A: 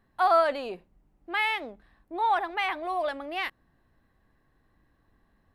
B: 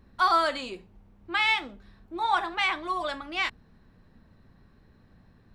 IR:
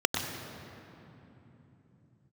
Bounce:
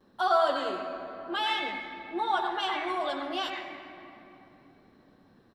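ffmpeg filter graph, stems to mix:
-filter_complex "[0:a]volume=-9dB,asplit=3[a][b][c];[b]volume=-10.5dB[d];[1:a]highpass=220,adelay=6.4,volume=-1dB,asplit=2[e][f];[f]volume=-16.5dB[g];[c]apad=whole_len=244735[h];[e][h]sidechaincompress=threshold=-41dB:ratio=8:attack=16:release=506[i];[2:a]atrim=start_sample=2205[j];[d][g]amix=inputs=2:normalize=0[k];[k][j]afir=irnorm=-1:irlink=0[l];[a][i][l]amix=inputs=3:normalize=0"

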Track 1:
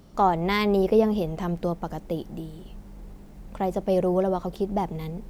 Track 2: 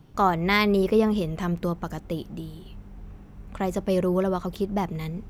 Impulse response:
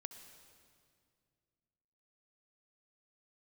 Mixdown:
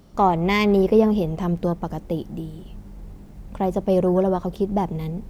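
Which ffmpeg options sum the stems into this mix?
-filter_complex "[0:a]volume=0.5dB[a];[1:a]afwtdn=0.02,volume=-4dB,asplit=2[b][c];[c]volume=-12dB[d];[2:a]atrim=start_sample=2205[e];[d][e]afir=irnorm=-1:irlink=0[f];[a][b][f]amix=inputs=3:normalize=0"

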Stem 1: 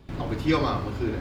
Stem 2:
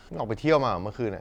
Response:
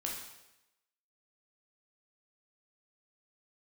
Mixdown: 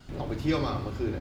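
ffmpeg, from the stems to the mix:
-filter_complex "[0:a]volume=-5.5dB,asplit=2[a][b];[b]volume=-7.5dB[c];[1:a]acompressor=threshold=-30dB:ratio=6,adelay=3.8,volume=-1.5dB[d];[2:a]atrim=start_sample=2205[e];[c][e]afir=irnorm=-1:irlink=0[f];[a][d][f]amix=inputs=3:normalize=0,equalizer=f=1k:w=0.4:g=-4.5"

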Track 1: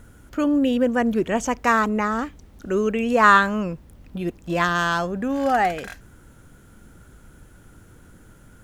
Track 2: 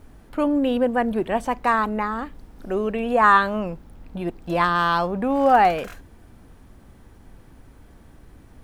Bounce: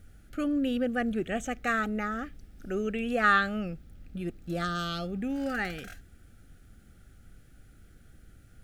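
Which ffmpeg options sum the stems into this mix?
-filter_complex "[0:a]volume=-13dB[a];[1:a]equalizer=f=500:t=o:w=2.1:g=-14,volume=-5.5dB[b];[a][b]amix=inputs=2:normalize=0,asuperstop=centerf=990:order=8:qfactor=2.7"

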